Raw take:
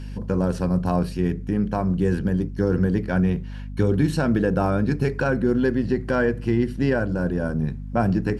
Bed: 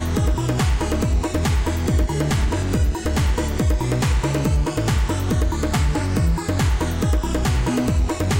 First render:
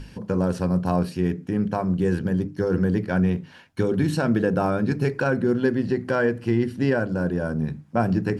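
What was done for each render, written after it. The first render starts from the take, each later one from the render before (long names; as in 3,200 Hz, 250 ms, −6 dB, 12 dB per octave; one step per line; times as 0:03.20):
mains-hum notches 50/100/150/200/250/300 Hz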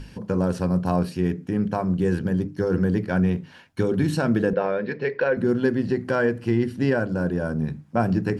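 0:04.53–0:05.37: loudspeaker in its box 280–4,100 Hz, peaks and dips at 290 Hz −9 dB, 500 Hz +7 dB, 770 Hz −6 dB, 1,300 Hz −6 dB, 1,900 Hz +8 dB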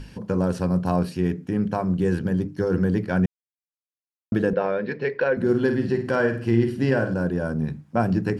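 0:03.26–0:04.32: silence
0:05.35–0:07.14: flutter between parallel walls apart 8.9 metres, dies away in 0.41 s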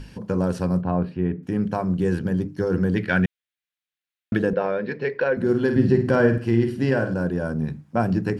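0:00.81–0:01.43: high-frequency loss of the air 450 metres
0:02.96–0:04.37: flat-topped bell 2,400 Hz +10.5 dB
0:05.76–0:06.38: low-shelf EQ 380 Hz +9 dB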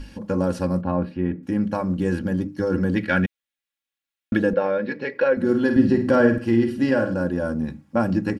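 comb filter 3.6 ms, depth 62%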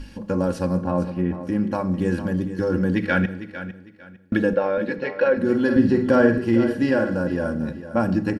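repeating echo 453 ms, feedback 26%, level −12.5 dB
four-comb reverb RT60 0.85 s, combs from 28 ms, DRR 15 dB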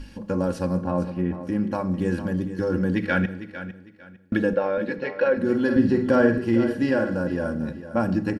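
level −2 dB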